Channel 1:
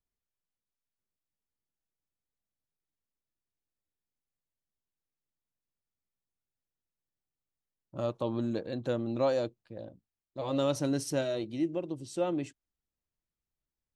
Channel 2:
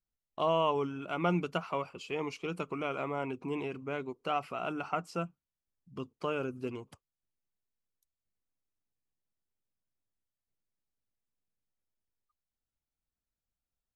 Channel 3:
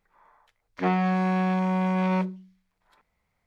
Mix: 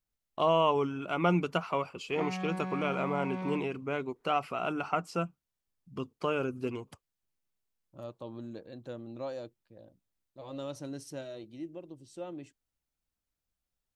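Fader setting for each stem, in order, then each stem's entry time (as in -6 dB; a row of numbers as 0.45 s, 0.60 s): -10.5 dB, +3.0 dB, -13.0 dB; 0.00 s, 0.00 s, 1.35 s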